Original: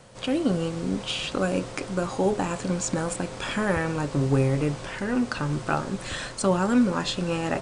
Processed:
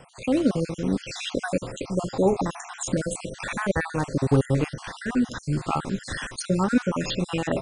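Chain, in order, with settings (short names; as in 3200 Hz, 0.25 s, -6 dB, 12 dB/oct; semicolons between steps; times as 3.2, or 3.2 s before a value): random spectral dropouts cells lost 51%; 4.75–6.76 bell 560 Hz -5.5 dB 0.72 oct; gain +3 dB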